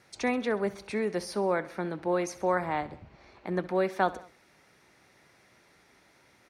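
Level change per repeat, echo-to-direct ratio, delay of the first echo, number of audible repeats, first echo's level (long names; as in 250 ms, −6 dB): −4.5 dB, −16.5 dB, 66 ms, 3, −18.0 dB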